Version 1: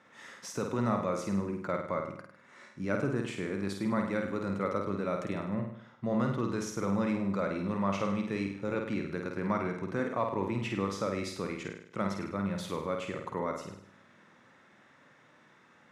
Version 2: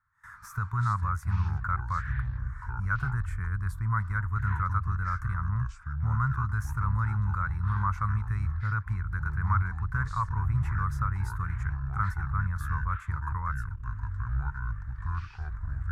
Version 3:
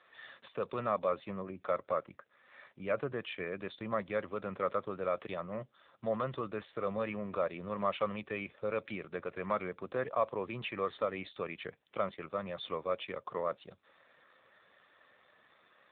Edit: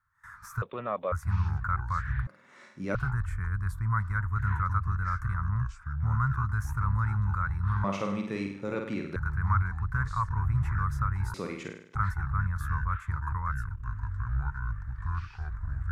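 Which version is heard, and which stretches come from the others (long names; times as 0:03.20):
2
0:00.62–0:01.12: punch in from 3
0:02.27–0:02.95: punch in from 1
0:07.84–0:09.16: punch in from 1
0:11.34–0:11.95: punch in from 1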